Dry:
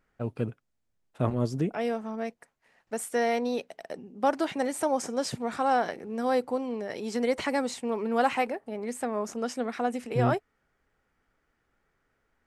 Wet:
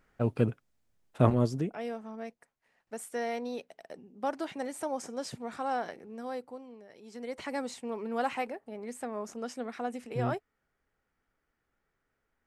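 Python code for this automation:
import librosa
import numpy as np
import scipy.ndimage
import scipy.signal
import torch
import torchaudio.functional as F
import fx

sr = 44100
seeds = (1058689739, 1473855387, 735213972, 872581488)

y = fx.gain(x, sr, db=fx.line((1.3, 4.0), (1.77, -7.5), (5.95, -7.5), (6.93, -19.0), (7.58, -6.5)))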